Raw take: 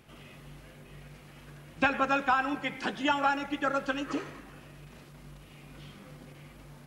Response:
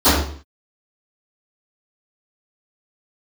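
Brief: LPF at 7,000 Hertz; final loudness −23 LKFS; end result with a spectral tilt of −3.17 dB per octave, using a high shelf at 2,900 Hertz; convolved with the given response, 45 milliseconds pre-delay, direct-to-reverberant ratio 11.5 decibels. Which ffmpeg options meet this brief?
-filter_complex "[0:a]lowpass=7000,highshelf=frequency=2900:gain=-5,asplit=2[link_01][link_02];[1:a]atrim=start_sample=2205,adelay=45[link_03];[link_02][link_03]afir=irnorm=-1:irlink=0,volume=-37.5dB[link_04];[link_01][link_04]amix=inputs=2:normalize=0,volume=6.5dB"

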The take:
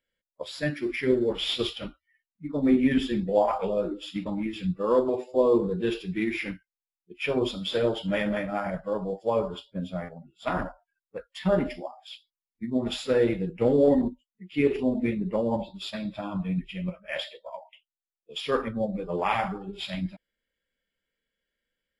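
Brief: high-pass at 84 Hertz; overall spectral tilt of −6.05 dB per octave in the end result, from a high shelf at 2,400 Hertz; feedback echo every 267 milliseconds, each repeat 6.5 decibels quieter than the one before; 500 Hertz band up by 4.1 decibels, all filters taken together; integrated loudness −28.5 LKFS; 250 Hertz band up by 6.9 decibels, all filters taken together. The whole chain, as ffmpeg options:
ffmpeg -i in.wav -af "highpass=84,equalizer=frequency=250:width_type=o:gain=7.5,equalizer=frequency=500:width_type=o:gain=3,highshelf=frequency=2400:gain=-6.5,aecho=1:1:267|534|801|1068|1335|1602:0.473|0.222|0.105|0.0491|0.0231|0.0109,volume=-6.5dB" out.wav

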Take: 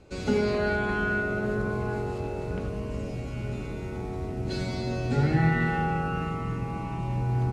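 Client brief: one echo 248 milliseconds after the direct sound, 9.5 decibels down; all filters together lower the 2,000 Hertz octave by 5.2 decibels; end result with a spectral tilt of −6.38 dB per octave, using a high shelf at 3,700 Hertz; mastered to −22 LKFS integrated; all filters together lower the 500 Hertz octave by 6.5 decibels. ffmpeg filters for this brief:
ffmpeg -i in.wav -af "equalizer=frequency=500:width_type=o:gain=-8.5,equalizer=frequency=2000:width_type=o:gain=-8.5,highshelf=frequency=3700:gain=4,aecho=1:1:248:0.335,volume=9dB" out.wav

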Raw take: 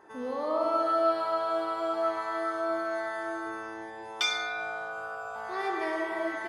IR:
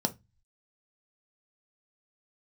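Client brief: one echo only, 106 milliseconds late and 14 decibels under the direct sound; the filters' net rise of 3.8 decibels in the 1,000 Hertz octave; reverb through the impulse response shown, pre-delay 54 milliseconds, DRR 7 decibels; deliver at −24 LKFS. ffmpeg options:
-filter_complex "[0:a]equalizer=frequency=1000:width_type=o:gain=5.5,aecho=1:1:106:0.2,asplit=2[link_01][link_02];[1:a]atrim=start_sample=2205,adelay=54[link_03];[link_02][link_03]afir=irnorm=-1:irlink=0,volume=-13dB[link_04];[link_01][link_04]amix=inputs=2:normalize=0,volume=4dB"

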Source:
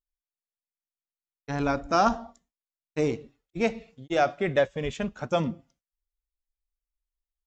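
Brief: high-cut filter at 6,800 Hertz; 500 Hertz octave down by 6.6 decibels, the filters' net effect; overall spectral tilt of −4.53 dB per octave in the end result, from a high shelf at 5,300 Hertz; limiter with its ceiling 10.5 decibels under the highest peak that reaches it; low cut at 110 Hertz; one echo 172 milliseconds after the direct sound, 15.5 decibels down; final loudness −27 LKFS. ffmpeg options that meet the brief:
ffmpeg -i in.wav -af "highpass=110,lowpass=6800,equalizer=frequency=500:width_type=o:gain=-8.5,highshelf=frequency=5300:gain=7,alimiter=limit=-22dB:level=0:latency=1,aecho=1:1:172:0.168,volume=8dB" out.wav

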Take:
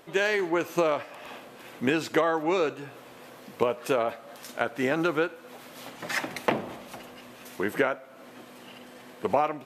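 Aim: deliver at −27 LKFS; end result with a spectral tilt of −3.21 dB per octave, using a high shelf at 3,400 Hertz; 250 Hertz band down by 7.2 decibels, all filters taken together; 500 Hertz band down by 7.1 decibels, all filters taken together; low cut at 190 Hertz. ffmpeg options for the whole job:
ffmpeg -i in.wav -af "highpass=190,equalizer=frequency=250:width_type=o:gain=-5.5,equalizer=frequency=500:width_type=o:gain=-7.5,highshelf=frequency=3400:gain=7,volume=4dB" out.wav

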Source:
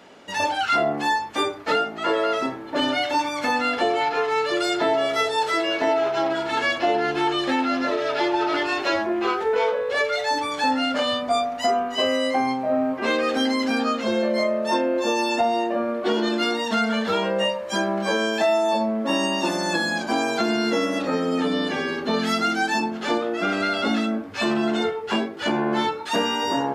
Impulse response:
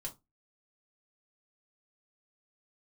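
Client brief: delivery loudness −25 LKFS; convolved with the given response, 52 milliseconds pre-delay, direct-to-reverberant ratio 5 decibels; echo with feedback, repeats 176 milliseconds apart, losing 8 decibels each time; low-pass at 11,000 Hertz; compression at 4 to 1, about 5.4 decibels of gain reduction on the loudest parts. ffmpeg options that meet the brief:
-filter_complex "[0:a]lowpass=11000,acompressor=threshold=-23dB:ratio=4,aecho=1:1:176|352|528|704|880:0.398|0.159|0.0637|0.0255|0.0102,asplit=2[link_01][link_02];[1:a]atrim=start_sample=2205,adelay=52[link_03];[link_02][link_03]afir=irnorm=-1:irlink=0,volume=-2.5dB[link_04];[link_01][link_04]amix=inputs=2:normalize=0"

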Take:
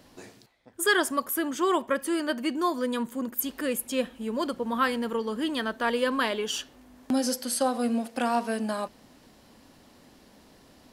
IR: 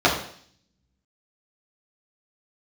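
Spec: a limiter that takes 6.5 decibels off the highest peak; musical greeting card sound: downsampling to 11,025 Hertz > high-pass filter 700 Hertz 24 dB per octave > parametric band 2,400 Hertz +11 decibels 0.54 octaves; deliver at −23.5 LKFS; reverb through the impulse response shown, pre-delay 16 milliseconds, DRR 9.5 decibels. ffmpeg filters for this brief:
-filter_complex "[0:a]alimiter=limit=-19dB:level=0:latency=1,asplit=2[link_01][link_02];[1:a]atrim=start_sample=2205,adelay=16[link_03];[link_02][link_03]afir=irnorm=-1:irlink=0,volume=-30.5dB[link_04];[link_01][link_04]amix=inputs=2:normalize=0,aresample=11025,aresample=44100,highpass=frequency=700:width=0.5412,highpass=frequency=700:width=1.3066,equalizer=frequency=2400:width_type=o:width=0.54:gain=11,volume=8.5dB"

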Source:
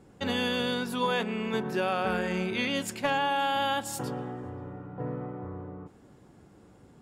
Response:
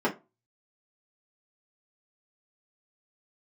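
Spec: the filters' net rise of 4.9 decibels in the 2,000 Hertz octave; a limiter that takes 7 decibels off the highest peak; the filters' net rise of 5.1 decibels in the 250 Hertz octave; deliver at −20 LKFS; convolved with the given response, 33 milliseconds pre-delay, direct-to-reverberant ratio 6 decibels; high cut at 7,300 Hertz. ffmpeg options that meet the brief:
-filter_complex "[0:a]lowpass=7300,equalizer=frequency=250:width_type=o:gain=6,equalizer=frequency=2000:width_type=o:gain=6.5,alimiter=limit=-20.5dB:level=0:latency=1,asplit=2[link_01][link_02];[1:a]atrim=start_sample=2205,adelay=33[link_03];[link_02][link_03]afir=irnorm=-1:irlink=0,volume=-18.5dB[link_04];[link_01][link_04]amix=inputs=2:normalize=0,volume=8dB"

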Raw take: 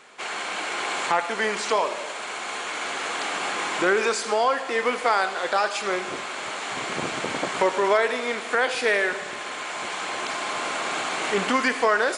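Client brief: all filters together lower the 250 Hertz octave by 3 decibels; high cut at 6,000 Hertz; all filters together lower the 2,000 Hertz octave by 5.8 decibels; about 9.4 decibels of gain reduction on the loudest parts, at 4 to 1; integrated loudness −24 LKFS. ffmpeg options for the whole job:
ffmpeg -i in.wav -af "lowpass=6000,equalizer=frequency=250:width_type=o:gain=-4,equalizer=frequency=2000:width_type=o:gain=-7.5,acompressor=threshold=-29dB:ratio=4,volume=8.5dB" out.wav

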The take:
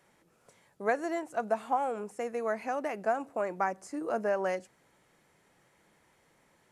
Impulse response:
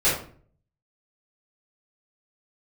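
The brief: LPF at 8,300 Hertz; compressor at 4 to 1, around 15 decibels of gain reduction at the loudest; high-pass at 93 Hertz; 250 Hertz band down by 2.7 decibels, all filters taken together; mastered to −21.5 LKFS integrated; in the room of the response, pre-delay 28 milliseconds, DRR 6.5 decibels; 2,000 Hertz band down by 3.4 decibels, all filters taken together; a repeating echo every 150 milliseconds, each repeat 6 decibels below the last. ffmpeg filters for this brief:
-filter_complex "[0:a]highpass=93,lowpass=8300,equalizer=frequency=250:width_type=o:gain=-3.5,equalizer=frequency=2000:width_type=o:gain=-4.5,acompressor=threshold=-43dB:ratio=4,aecho=1:1:150|300|450|600|750|900:0.501|0.251|0.125|0.0626|0.0313|0.0157,asplit=2[link_01][link_02];[1:a]atrim=start_sample=2205,adelay=28[link_03];[link_02][link_03]afir=irnorm=-1:irlink=0,volume=-22dB[link_04];[link_01][link_04]amix=inputs=2:normalize=0,volume=22dB"

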